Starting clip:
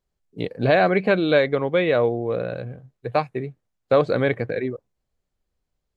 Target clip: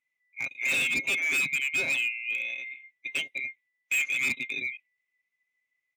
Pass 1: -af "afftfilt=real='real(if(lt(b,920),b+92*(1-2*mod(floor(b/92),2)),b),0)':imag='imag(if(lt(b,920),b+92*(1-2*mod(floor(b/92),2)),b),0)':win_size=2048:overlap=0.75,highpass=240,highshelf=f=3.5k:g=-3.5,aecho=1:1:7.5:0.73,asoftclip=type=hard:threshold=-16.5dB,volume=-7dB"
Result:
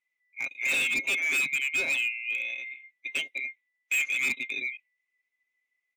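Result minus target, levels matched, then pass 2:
125 Hz band -6.5 dB
-af "afftfilt=real='real(if(lt(b,920),b+92*(1-2*mod(floor(b/92),2)),b),0)':imag='imag(if(lt(b,920),b+92*(1-2*mod(floor(b/92),2)),b),0)':win_size=2048:overlap=0.75,highpass=110,highshelf=f=3.5k:g=-3.5,aecho=1:1:7.5:0.73,asoftclip=type=hard:threshold=-16.5dB,volume=-7dB"

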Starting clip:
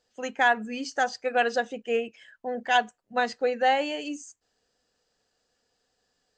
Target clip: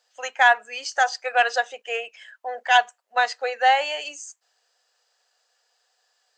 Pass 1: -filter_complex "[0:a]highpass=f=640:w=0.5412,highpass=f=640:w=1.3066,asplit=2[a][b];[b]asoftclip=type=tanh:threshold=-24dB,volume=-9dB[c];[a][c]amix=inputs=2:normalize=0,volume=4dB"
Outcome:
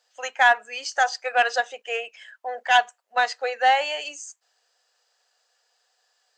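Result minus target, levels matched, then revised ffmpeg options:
soft clip: distortion +10 dB
-filter_complex "[0:a]highpass=f=640:w=0.5412,highpass=f=640:w=1.3066,asplit=2[a][b];[b]asoftclip=type=tanh:threshold=-15dB,volume=-9dB[c];[a][c]amix=inputs=2:normalize=0,volume=4dB"

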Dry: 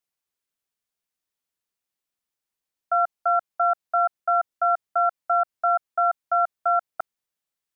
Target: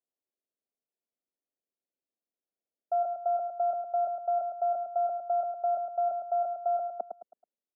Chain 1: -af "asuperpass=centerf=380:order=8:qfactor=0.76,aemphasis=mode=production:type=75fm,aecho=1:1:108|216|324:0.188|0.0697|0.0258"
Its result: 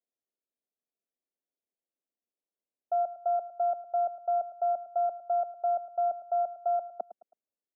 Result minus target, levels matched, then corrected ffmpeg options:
echo-to-direct -8.5 dB
-af "asuperpass=centerf=380:order=8:qfactor=0.76,aemphasis=mode=production:type=75fm,aecho=1:1:108|216|324|432:0.501|0.185|0.0686|0.0254"

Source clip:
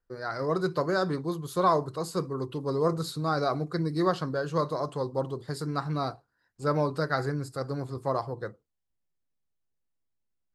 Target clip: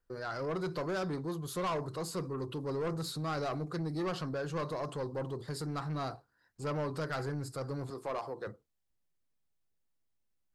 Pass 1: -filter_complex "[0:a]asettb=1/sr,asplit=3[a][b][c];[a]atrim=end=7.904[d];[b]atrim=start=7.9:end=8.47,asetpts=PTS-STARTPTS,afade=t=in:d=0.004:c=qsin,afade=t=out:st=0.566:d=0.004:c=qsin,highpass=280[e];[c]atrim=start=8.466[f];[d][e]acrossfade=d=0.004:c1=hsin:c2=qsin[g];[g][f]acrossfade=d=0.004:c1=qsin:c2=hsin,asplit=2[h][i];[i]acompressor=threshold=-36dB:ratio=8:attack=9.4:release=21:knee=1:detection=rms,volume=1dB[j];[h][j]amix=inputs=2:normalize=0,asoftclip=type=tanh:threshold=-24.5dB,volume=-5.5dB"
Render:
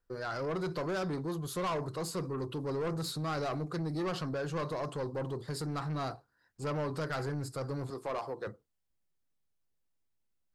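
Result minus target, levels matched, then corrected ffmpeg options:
compressor: peak gain reduction -6.5 dB
-filter_complex "[0:a]asettb=1/sr,asplit=3[a][b][c];[a]atrim=end=7.904[d];[b]atrim=start=7.9:end=8.47,asetpts=PTS-STARTPTS,afade=t=in:d=0.004:c=qsin,afade=t=out:st=0.566:d=0.004:c=qsin,highpass=280[e];[c]atrim=start=8.466[f];[d][e]acrossfade=d=0.004:c1=hsin:c2=qsin[g];[g][f]acrossfade=d=0.004:c1=qsin:c2=hsin,asplit=2[h][i];[i]acompressor=threshold=-43.5dB:ratio=8:attack=9.4:release=21:knee=1:detection=rms,volume=1dB[j];[h][j]amix=inputs=2:normalize=0,asoftclip=type=tanh:threshold=-24.5dB,volume=-5.5dB"

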